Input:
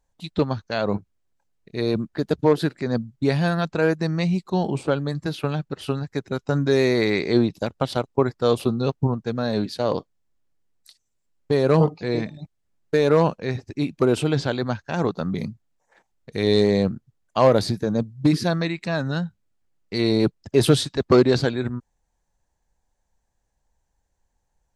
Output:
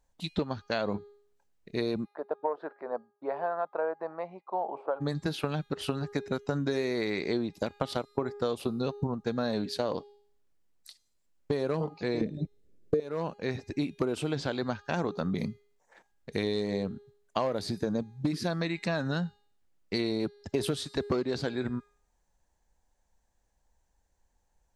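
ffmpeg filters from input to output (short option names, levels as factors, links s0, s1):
-filter_complex "[0:a]asplit=3[s0][s1][s2];[s0]afade=t=out:st=2.04:d=0.02[s3];[s1]asuperpass=centerf=800:order=4:qfactor=1.3,afade=t=in:st=2.04:d=0.02,afade=t=out:st=5:d=0.02[s4];[s2]afade=t=in:st=5:d=0.02[s5];[s3][s4][s5]amix=inputs=3:normalize=0,asettb=1/sr,asplit=3[s6][s7][s8];[s6]atrim=end=12.214[s9];[s7]atrim=start=12.21:end=13,asetpts=PTS-STARTPTS,afade=t=in:d=0.004:c=qsin,afade=t=out:st=0.786:d=0.004:c=qsin,lowshelf=f=610:t=q:w=3:g=11[s10];[s8]atrim=start=12.996[s11];[s9][s10]acrossfade=d=0.004:c1=hsin:c2=qsin[s12];[s12][s11]acrossfade=d=0.004:c1=qsin:c2=hsin,equalizer=f=120:t=o:w=0.65:g=-5.5,bandreject=f=409.9:t=h:w=4,bandreject=f=819.8:t=h:w=4,bandreject=f=1229.7:t=h:w=4,bandreject=f=1639.6:t=h:w=4,bandreject=f=2049.5:t=h:w=4,bandreject=f=2459.4:t=h:w=4,bandreject=f=2869.3:t=h:w=4,bandreject=f=3279.2:t=h:w=4,bandreject=f=3689.1:t=h:w=4,bandreject=f=4099:t=h:w=4,bandreject=f=4508.9:t=h:w=4,bandreject=f=4918.8:t=h:w=4,bandreject=f=5328.7:t=h:w=4,bandreject=f=5738.6:t=h:w=4,bandreject=f=6148.5:t=h:w=4,bandreject=f=6558.4:t=h:w=4,bandreject=f=6968.3:t=h:w=4,bandreject=f=7378.2:t=h:w=4,bandreject=f=7788.1:t=h:w=4,bandreject=f=8198:t=h:w=4,bandreject=f=8607.9:t=h:w=4,bandreject=f=9017.8:t=h:w=4,bandreject=f=9427.7:t=h:w=4,bandreject=f=9837.6:t=h:w=4,bandreject=f=10247.5:t=h:w=4,bandreject=f=10657.4:t=h:w=4,bandreject=f=11067.3:t=h:w=4,bandreject=f=11477.2:t=h:w=4,bandreject=f=11887.1:t=h:w=4,bandreject=f=12297:t=h:w=4,bandreject=f=12706.9:t=h:w=4,bandreject=f=13116.8:t=h:w=4,bandreject=f=13526.7:t=h:w=4,bandreject=f=13936.6:t=h:w=4,acompressor=threshold=0.0501:ratio=12"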